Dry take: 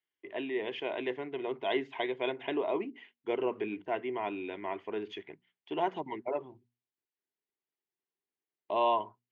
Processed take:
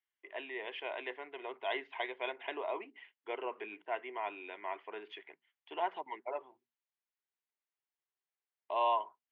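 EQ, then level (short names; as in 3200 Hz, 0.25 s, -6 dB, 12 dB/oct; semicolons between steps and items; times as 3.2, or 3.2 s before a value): BPF 730–3400 Hz; air absorption 58 m; 0.0 dB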